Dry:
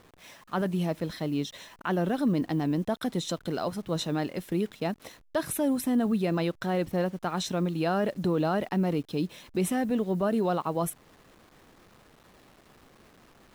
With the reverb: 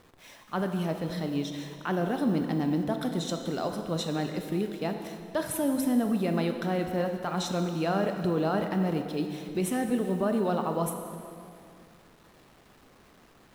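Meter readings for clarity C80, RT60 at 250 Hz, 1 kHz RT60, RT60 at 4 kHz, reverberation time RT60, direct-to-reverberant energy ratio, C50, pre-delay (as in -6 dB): 7.0 dB, 2.6 s, 2.4 s, 2.0 s, 2.5 s, 5.0 dB, 6.0 dB, 18 ms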